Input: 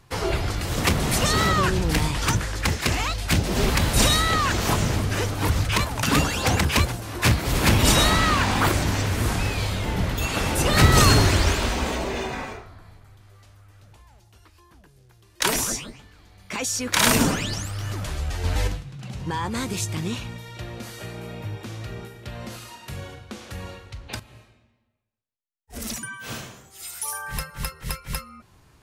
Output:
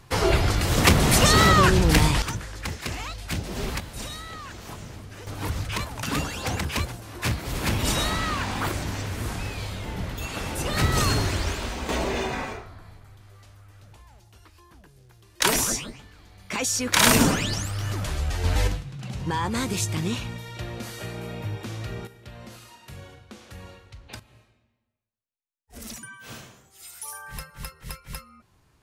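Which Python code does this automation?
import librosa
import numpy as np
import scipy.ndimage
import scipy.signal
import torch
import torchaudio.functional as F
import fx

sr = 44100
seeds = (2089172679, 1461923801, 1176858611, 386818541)

y = fx.gain(x, sr, db=fx.steps((0.0, 4.0), (2.22, -8.5), (3.8, -17.0), (5.27, -7.0), (11.89, 1.0), (22.07, -7.0)))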